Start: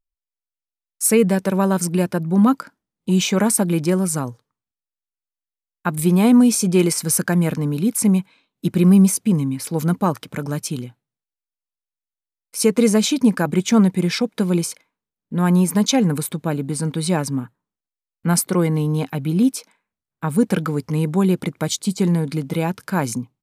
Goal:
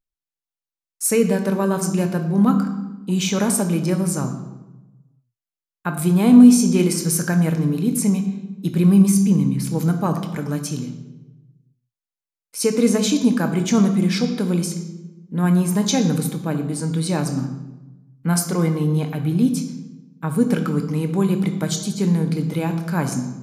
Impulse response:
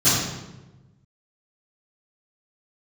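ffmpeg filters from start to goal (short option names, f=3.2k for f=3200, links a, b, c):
-filter_complex "[0:a]asplit=2[a][b];[1:a]atrim=start_sample=2205,lowshelf=f=130:g=-11[c];[b][c]afir=irnorm=-1:irlink=0,volume=-24dB[d];[a][d]amix=inputs=2:normalize=0,volume=-3.5dB"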